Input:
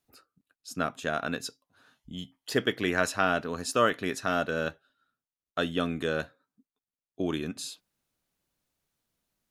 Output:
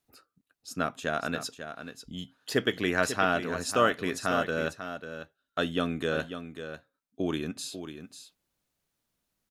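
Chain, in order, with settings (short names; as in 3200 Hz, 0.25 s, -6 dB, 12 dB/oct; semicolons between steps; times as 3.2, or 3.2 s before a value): echo 0.544 s -10 dB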